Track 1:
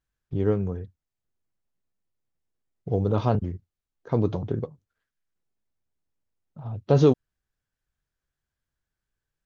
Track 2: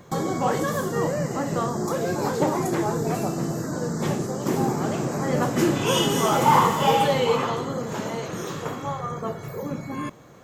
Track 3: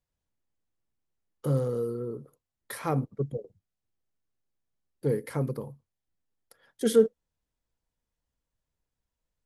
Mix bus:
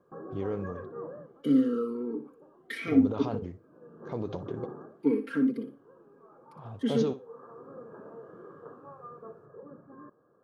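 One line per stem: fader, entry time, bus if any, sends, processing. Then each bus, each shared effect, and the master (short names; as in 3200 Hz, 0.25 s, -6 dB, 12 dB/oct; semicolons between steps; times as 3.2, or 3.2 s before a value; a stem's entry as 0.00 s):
-3.0 dB, 0.00 s, bus A, no send, echo send -21 dB, dry
-13.5 dB, 0.00 s, bus A, no send, no echo send, rippled Chebyshev low-pass 1700 Hz, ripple 9 dB; low shelf 440 Hz +4.5 dB; auto duck -18 dB, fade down 0.25 s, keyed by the third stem
+3.0 dB, 0.00 s, no bus, no send, echo send -10.5 dB, comb 4.4 ms, depth 67%; AGC gain up to 15.5 dB; vowel sweep i-u 0.71 Hz
bus A: 0.0 dB, limiter -19.5 dBFS, peak gain reduction 9 dB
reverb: off
echo: feedback echo 61 ms, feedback 17%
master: low shelf 170 Hz -11.5 dB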